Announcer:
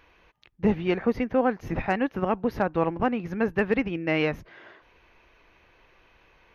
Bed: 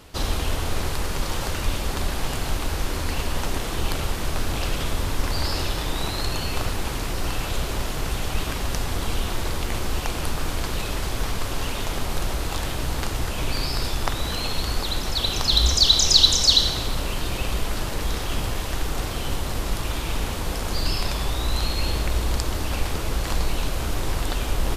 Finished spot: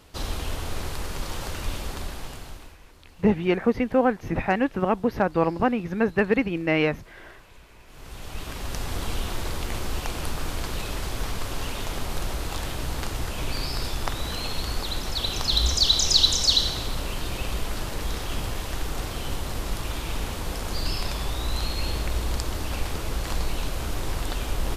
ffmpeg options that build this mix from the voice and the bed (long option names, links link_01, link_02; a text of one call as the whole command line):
ffmpeg -i stem1.wav -i stem2.wav -filter_complex "[0:a]adelay=2600,volume=2.5dB[link_01];[1:a]volume=17dB,afade=type=out:start_time=1.79:duration=0.99:silence=0.0944061,afade=type=in:start_time=7.86:duration=1.1:silence=0.0749894[link_02];[link_01][link_02]amix=inputs=2:normalize=0" out.wav